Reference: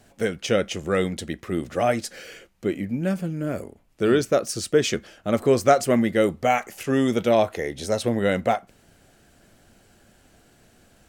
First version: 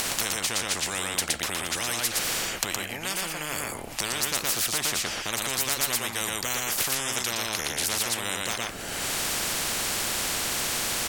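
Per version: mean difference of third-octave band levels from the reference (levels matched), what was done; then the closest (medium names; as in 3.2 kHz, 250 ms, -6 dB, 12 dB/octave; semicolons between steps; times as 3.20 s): 16.0 dB: bass shelf 280 Hz -5.5 dB; upward compressor, threshold -24 dBFS; delay 117 ms -4.5 dB; spectrum-flattening compressor 10:1; trim +3 dB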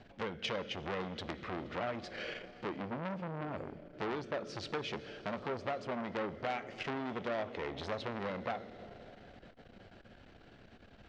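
10.0 dB: low-pass 4.1 kHz 24 dB/octave; compression 8:1, threshold -32 dBFS, peak gain reduction 20 dB; plate-style reverb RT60 5 s, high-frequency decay 1×, DRR 12.5 dB; transformer saturation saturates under 2.2 kHz; trim +1 dB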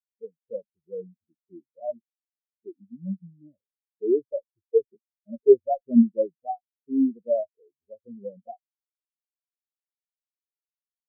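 22.5 dB: valve stage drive 12 dB, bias 0.5; tape spacing loss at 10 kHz 44 dB; loudness maximiser +14 dB; spectral contrast expander 4:1; trim -4 dB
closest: second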